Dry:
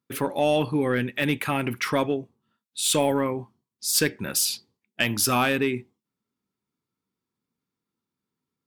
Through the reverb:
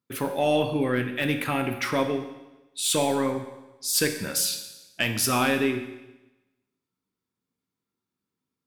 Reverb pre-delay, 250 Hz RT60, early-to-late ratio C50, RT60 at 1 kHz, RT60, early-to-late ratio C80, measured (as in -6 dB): 11 ms, 1.1 s, 8.5 dB, 1.0 s, 1.0 s, 10.5 dB